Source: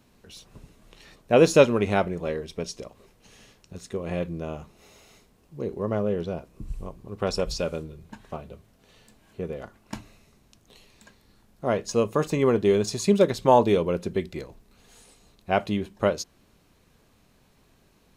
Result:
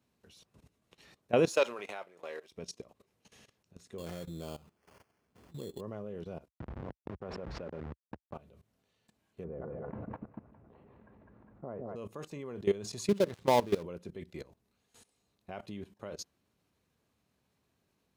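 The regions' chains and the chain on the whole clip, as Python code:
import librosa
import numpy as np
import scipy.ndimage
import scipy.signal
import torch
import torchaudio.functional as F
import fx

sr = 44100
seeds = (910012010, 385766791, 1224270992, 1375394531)

y = fx.chain(x, sr, fx.highpass(hz=650.0, slope=12),
    fx.leveller(passes=1), at=(1.48, 2.52))
y = fx.chain(y, sr, fx.sample_hold(seeds[0], rate_hz=3800.0, jitter_pct=0),
    fx.pre_swell(db_per_s=93.0), at=(3.98, 5.81))
y = fx.chain(y, sr, fx.delta_hold(step_db=-32.5),
    fx.lowpass(hz=1600.0, slope=12),
    fx.env_flatten(amount_pct=70), at=(6.48, 8.34))
y = fx.chain(y, sr, fx.bessel_lowpass(hz=1000.0, order=4),
    fx.echo_split(split_hz=580.0, low_ms=147, high_ms=204, feedback_pct=52, wet_db=-5.5),
    fx.env_flatten(amount_pct=50), at=(9.44, 11.96))
y = fx.chain(y, sr, fx.dead_time(dead_ms=0.15),
    fx.high_shelf(hz=8300.0, db=-5.5), at=(13.08, 13.83))
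y = scipy.signal.sosfilt(scipy.signal.butter(4, 59.0, 'highpass', fs=sr, output='sos'), y)
y = fx.level_steps(y, sr, step_db=18)
y = y * librosa.db_to_amplitude(-5.5)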